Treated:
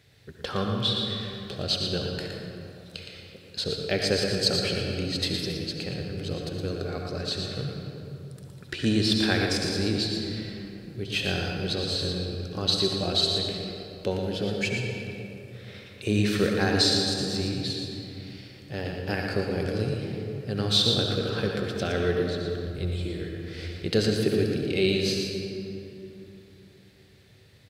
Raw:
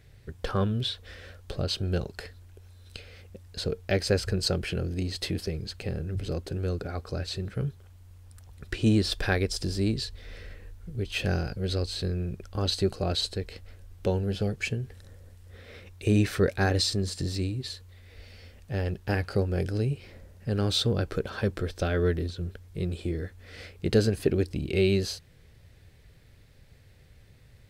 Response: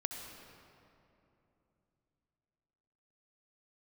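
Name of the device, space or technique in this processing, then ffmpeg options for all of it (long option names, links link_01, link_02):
PA in a hall: -filter_complex "[0:a]highpass=120,equalizer=frequency=3900:width_type=o:width=1.2:gain=6.5,aecho=1:1:116:0.501[link_01];[1:a]atrim=start_sample=2205[link_02];[link_01][link_02]afir=irnorm=-1:irlink=0,asplit=3[link_03][link_04][link_05];[link_03]afade=type=out:start_time=22.66:duration=0.02[link_06];[link_04]asubboost=boost=5.5:cutoff=72,afade=type=in:start_time=22.66:duration=0.02,afade=type=out:start_time=23.86:duration=0.02[link_07];[link_05]afade=type=in:start_time=23.86:duration=0.02[link_08];[link_06][link_07][link_08]amix=inputs=3:normalize=0"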